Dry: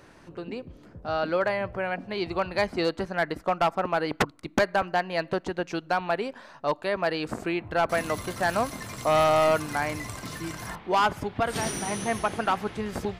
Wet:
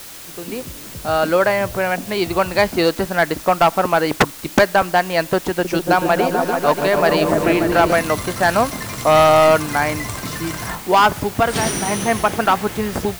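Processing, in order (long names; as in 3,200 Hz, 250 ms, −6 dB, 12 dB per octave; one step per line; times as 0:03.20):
automatic gain control gain up to 10 dB
bit-depth reduction 6 bits, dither triangular
0:05.50–0:07.93: echo whose low-pass opens from repeat to repeat 145 ms, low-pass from 400 Hz, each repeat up 1 octave, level 0 dB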